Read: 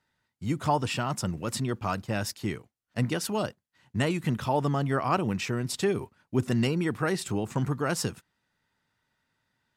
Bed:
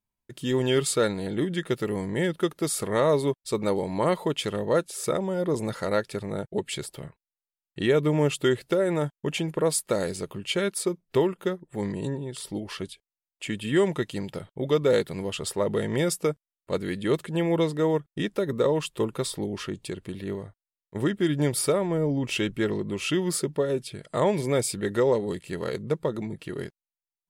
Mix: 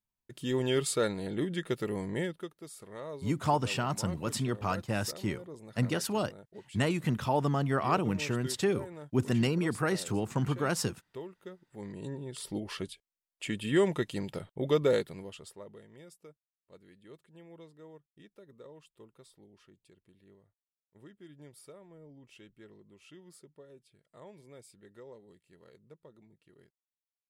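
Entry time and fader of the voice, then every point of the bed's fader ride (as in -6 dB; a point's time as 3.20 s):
2.80 s, -2.0 dB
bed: 2.17 s -5.5 dB
2.56 s -20 dB
11.38 s -20 dB
12.46 s -3.5 dB
14.86 s -3.5 dB
15.88 s -28 dB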